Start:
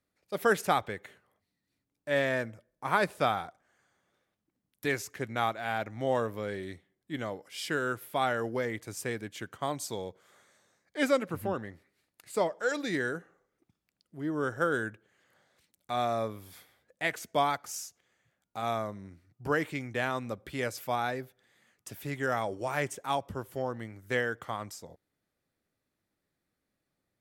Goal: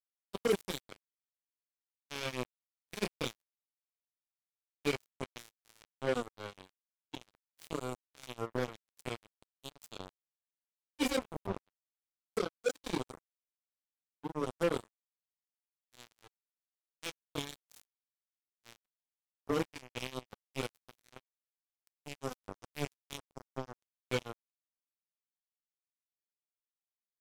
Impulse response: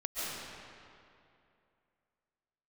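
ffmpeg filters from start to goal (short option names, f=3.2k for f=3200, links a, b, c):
-af "afftfilt=real='re*(1-between(b*sr/4096,540,2200))':imag='im*(1-between(b*sr/4096,540,2200))':win_size=4096:overlap=0.75,flanger=delay=20:depth=4.2:speed=0.18,acrusher=bits=4:mix=0:aa=0.5,volume=1dB"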